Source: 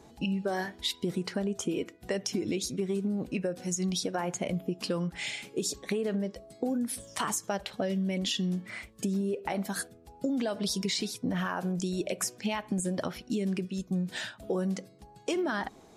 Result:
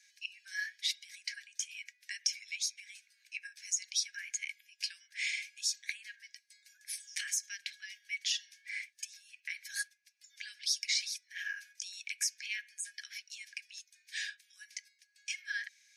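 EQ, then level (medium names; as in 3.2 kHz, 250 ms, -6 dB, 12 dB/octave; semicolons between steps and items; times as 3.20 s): rippled Chebyshev high-pass 1.6 kHz, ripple 9 dB; treble shelf 8.6 kHz -7 dB; band-stop 7.4 kHz, Q 8.5; +6.0 dB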